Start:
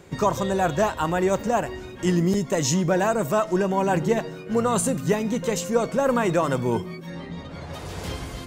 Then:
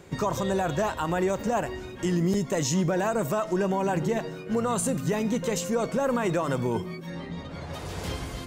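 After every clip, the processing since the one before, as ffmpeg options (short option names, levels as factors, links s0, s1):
-af "alimiter=limit=0.15:level=0:latency=1:release=57,volume=0.891"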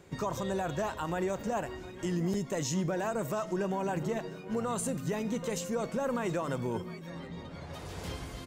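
-af "aecho=1:1:714:0.119,volume=0.473"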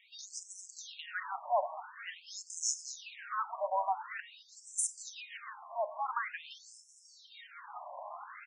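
-filter_complex "[0:a]asplit=8[s0][s1][s2][s3][s4][s5][s6][s7];[s1]adelay=220,afreqshift=-96,volume=0.251[s8];[s2]adelay=440,afreqshift=-192,volume=0.153[s9];[s3]adelay=660,afreqshift=-288,volume=0.0933[s10];[s4]adelay=880,afreqshift=-384,volume=0.0569[s11];[s5]adelay=1100,afreqshift=-480,volume=0.0347[s12];[s6]adelay=1320,afreqshift=-576,volume=0.0211[s13];[s7]adelay=1540,afreqshift=-672,volume=0.0129[s14];[s0][s8][s9][s10][s11][s12][s13][s14]amix=inputs=8:normalize=0,afftfilt=real='re*between(b*sr/1024,780*pow(7500/780,0.5+0.5*sin(2*PI*0.47*pts/sr))/1.41,780*pow(7500/780,0.5+0.5*sin(2*PI*0.47*pts/sr))*1.41)':imag='im*between(b*sr/1024,780*pow(7500/780,0.5+0.5*sin(2*PI*0.47*pts/sr))/1.41,780*pow(7500/780,0.5+0.5*sin(2*PI*0.47*pts/sr))*1.41)':win_size=1024:overlap=0.75,volume=1.78"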